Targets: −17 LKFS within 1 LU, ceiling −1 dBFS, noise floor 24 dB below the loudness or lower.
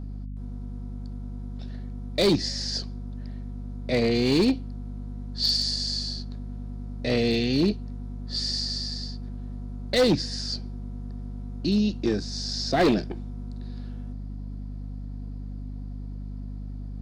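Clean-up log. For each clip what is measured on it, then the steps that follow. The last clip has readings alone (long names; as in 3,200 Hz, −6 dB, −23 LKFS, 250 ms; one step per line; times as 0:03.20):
share of clipped samples 0.7%; peaks flattened at −15.5 dBFS; mains hum 50 Hz; hum harmonics up to 250 Hz; level of the hum −33 dBFS; integrated loudness −28.5 LKFS; sample peak −15.5 dBFS; target loudness −17.0 LKFS
→ clipped peaks rebuilt −15.5 dBFS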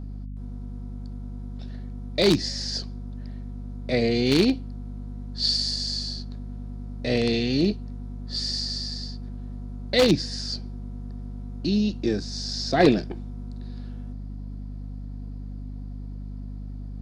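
share of clipped samples 0.0%; mains hum 50 Hz; hum harmonics up to 250 Hz; level of the hum −32 dBFS
→ hum removal 50 Hz, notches 5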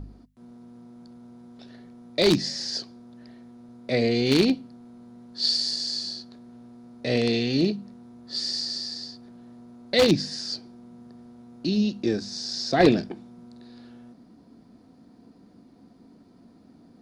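mains hum none found; integrated loudness −25.0 LKFS; sample peak −6.5 dBFS; target loudness −17.0 LKFS
→ level +8 dB
brickwall limiter −1 dBFS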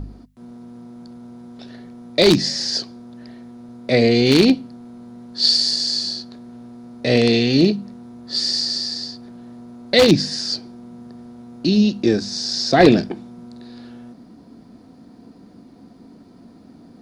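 integrated loudness −17.5 LKFS; sample peak −1.0 dBFS; background noise floor −46 dBFS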